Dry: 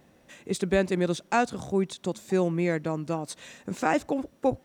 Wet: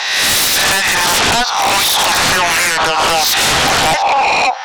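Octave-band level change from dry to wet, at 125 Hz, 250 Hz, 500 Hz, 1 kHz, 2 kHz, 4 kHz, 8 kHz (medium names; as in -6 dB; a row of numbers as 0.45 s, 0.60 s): +4.5 dB, +1.5 dB, +7.0 dB, +19.5 dB, +22.5 dB, +31.0 dB, +28.0 dB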